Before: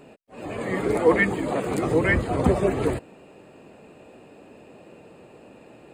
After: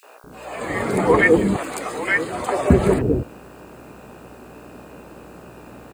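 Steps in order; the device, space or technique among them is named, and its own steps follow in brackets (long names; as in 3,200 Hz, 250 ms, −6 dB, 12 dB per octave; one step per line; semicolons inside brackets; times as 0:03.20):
0:01.32–0:02.46: high-pass filter 1,200 Hz 6 dB per octave
video cassette with head-switching buzz (hum with harmonics 60 Hz, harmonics 27, −53 dBFS −2 dB per octave; white noise bed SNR 39 dB)
three-band delay without the direct sound highs, mids, lows 30/240 ms, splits 510/2,800 Hz
level +7 dB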